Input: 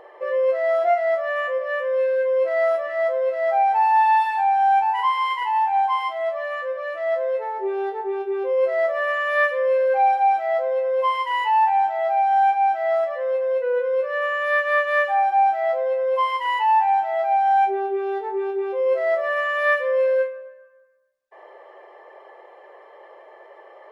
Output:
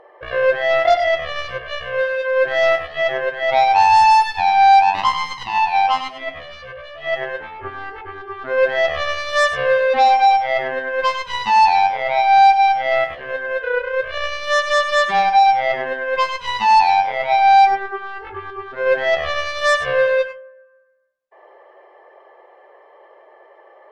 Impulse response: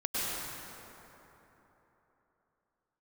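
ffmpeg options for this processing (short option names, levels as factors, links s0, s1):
-filter_complex "[0:a]aeval=exprs='0.335*(cos(1*acos(clip(val(0)/0.335,-1,1)))-cos(1*PI/2))+0.075*(cos(7*acos(clip(val(0)/0.335,-1,1)))-cos(7*PI/2))':c=same,aemphasis=mode=reproduction:type=cd[s0];[1:a]atrim=start_sample=2205,atrim=end_sample=4410[s1];[s0][s1]afir=irnorm=-1:irlink=0,volume=1.68"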